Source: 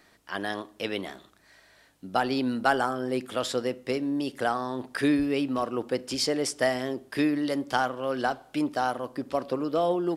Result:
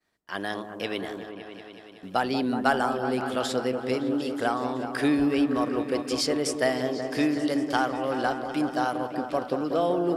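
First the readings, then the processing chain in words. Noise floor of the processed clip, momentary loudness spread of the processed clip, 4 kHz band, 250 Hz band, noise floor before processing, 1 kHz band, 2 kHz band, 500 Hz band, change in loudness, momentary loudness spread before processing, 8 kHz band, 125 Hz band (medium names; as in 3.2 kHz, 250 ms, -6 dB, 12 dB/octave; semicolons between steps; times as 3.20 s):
-46 dBFS, 10 LU, +0.5 dB, +2.0 dB, -60 dBFS, +1.0 dB, +0.5 dB, +1.5 dB, +1.5 dB, 8 LU, 0.0 dB, +1.5 dB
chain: expander -49 dBFS; delay with an opening low-pass 187 ms, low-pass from 750 Hz, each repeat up 1 oct, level -6 dB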